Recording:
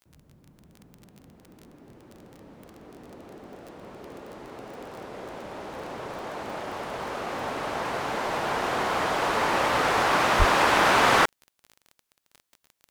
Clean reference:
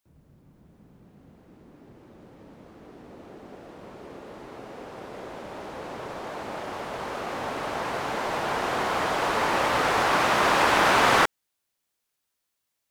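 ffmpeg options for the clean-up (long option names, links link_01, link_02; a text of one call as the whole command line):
ffmpeg -i in.wav -filter_complex "[0:a]adeclick=threshold=4,asplit=3[link_01][link_02][link_03];[link_01]afade=type=out:start_time=10.38:duration=0.02[link_04];[link_02]highpass=frequency=140:width=0.5412,highpass=frequency=140:width=1.3066,afade=type=in:start_time=10.38:duration=0.02,afade=type=out:start_time=10.5:duration=0.02[link_05];[link_03]afade=type=in:start_time=10.5:duration=0.02[link_06];[link_04][link_05][link_06]amix=inputs=3:normalize=0" out.wav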